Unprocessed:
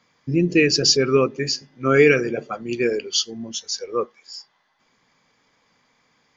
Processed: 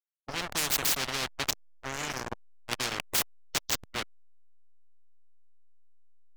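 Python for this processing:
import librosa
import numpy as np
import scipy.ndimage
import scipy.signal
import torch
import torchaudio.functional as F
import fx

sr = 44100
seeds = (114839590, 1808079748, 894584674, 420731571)

y = fx.spec_box(x, sr, start_s=1.5, length_s=1.07, low_hz=390.0, high_hz=5400.0, gain_db=-23)
y = fx.backlash(y, sr, play_db=-15.5)
y = fx.spectral_comp(y, sr, ratio=10.0)
y = F.gain(torch.from_numpy(y), -4.5).numpy()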